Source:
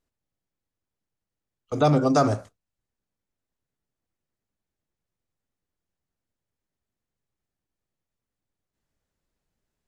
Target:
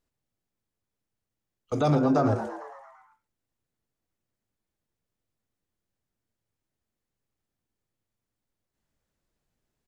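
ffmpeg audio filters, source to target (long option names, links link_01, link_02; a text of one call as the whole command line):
ffmpeg -i in.wav -filter_complex "[0:a]asettb=1/sr,asplit=3[link_01][link_02][link_03];[link_01]atrim=end=1.954[link_04];[link_02]atrim=start=1.95:end=2.36,asetpts=PTS-STARTPTS,afade=type=in:duration=0.004:curve=qsin,afade=type=out:start_time=0.406:duration=0.004:curve=qsin,lowpass=frequency=1400:poles=1[link_05];[link_03]atrim=start=2.356[link_06];[link_04][link_05]acrossfade=duration=0.004:curve1=hsin:curve2=qsin[link_07];[link_07][link_06]acrossfade=duration=0.004:curve1=qsin:curve2=hsin,alimiter=limit=-14.5dB:level=0:latency=1:release=40,asplit=8[link_08][link_09][link_10][link_11][link_12][link_13][link_14][link_15];[link_09]adelay=113,afreqshift=110,volume=-11.5dB[link_16];[link_10]adelay=226,afreqshift=220,volume=-16.1dB[link_17];[link_11]adelay=339,afreqshift=330,volume=-20.7dB[link_18];[link_12]adelay=452,afreqshift=440,volume=-25.2dB[link_19];[link_13]adelay=565,afreqshift=550,volume=-29.8dB[link_20];[link_14]adelay=678,afreqshift=660,volume=-34.4dB[link_21];[link_15]adelay=791,afreqshift=770,volume=-39dB[link_22];[link_08][link_16][link_17][link_18][link_19][link_20][link_21][link_22]amix=inputs=8:normalize=0" out.wav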